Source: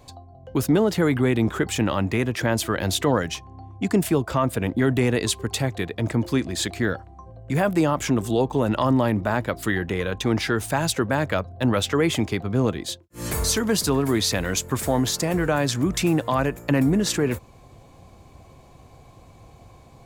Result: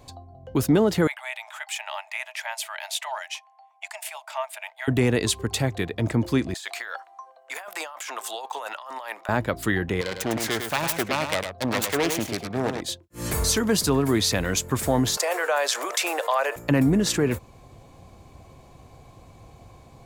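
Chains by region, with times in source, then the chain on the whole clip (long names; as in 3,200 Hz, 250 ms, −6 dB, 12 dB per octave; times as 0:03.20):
0:01.07–0:04.88: Chebyshev high-pass with heavy ripple 610 Hz, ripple 9 dB + parametric band 9,400 Hz +5.5 dB 1.4 octaves
0:06.54–0:09.29: high-pass filter 750 Hz 24 dB per octave + compressor whose output falls as the input rises −35 dBFS
0:10.01–0:12.81: phase distortion by the signal itself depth 0.34 ms + low-shelf EQ 230 Hz −12 dB + single-tap delay 104 ms −7 dB
0:15.17–0:16.56: Butterworth high-pass 500 Hz + envelope flattener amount 50%
whole clip: no processing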